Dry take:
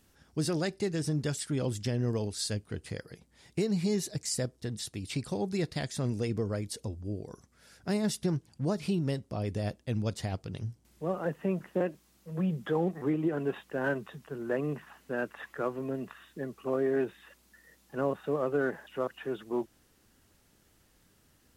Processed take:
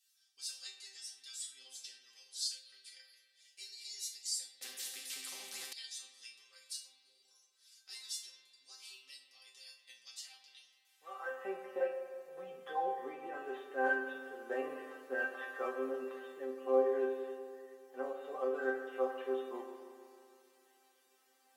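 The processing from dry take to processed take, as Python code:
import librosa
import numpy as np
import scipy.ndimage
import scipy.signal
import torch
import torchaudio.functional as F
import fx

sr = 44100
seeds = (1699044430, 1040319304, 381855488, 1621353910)

y = fx.rider(x, sr, range_db=3, speed_s=2.0)
y = fx.filter_sweep_highpass(y, sr, from_hz=3900.0, to_hz=570.0, start_s=10.56, end_s=11.54, q=1.3)
y = fx.resonator_bank(y, sr, root=60, chord='fifth', decay_s=0.32)
y = fx.rev_spring(y, sr, rt60_s=2.3, pass_ms=(38, 47), chirp_ms=70, drr_db=5.5)
y = fx.spectral_comp(y, sr, ratio=4.0, at=(4.61, 5.73))
y = F.gain(torch.from_numpy(y), 11.5).numpy()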